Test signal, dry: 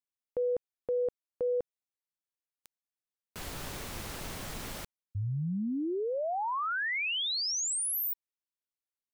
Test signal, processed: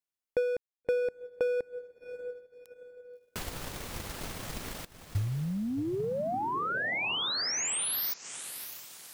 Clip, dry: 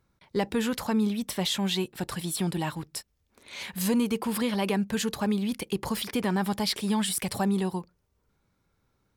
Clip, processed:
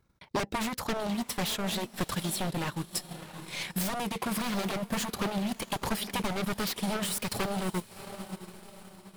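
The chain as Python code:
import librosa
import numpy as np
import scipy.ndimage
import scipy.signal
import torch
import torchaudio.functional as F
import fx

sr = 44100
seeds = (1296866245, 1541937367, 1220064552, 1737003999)

y = 10.0 ** (-27.5 / 20.0) * (np.abs((x / 10.0 ** (-27.5 / 20.0) + 3.0) % 4.0 - 2.0) - 1.0)
y = fx.echo_diffused(y, sr, ms=650, feedback_pct=43, wet_db=-10.0)
y = fx.transient(y, sr, attack_db=7, sustain_db=-10)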